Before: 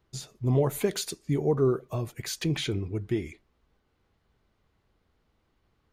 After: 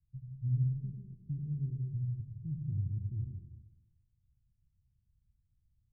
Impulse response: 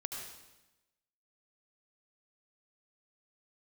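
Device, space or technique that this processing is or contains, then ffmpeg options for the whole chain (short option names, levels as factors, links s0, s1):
club heard from the street: -filter_complex "[0:a]alimiter=limit=0.0944:level=0:latency=1,lowpass=f=140:w=0.5412,lowpass=f=140:w=1.3066[s0];[1:a]atrim=start_sample=2205[s1];[s0][s1]afir=irnorm=-1:irlink=0"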